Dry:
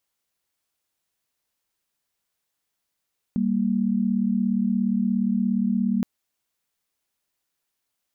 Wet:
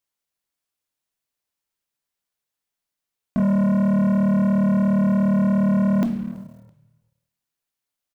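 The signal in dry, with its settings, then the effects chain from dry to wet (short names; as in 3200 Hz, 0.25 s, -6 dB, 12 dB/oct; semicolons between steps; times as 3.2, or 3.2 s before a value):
chord G3/A#3 sine, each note -22.5 dBFS 2.67 s
shoebox room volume 250 m³, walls mixed, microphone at 0.37 m; sample leveller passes 3; frequency-shifting echo 0.331 s, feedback 38%, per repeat -40 Hz, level -24 dB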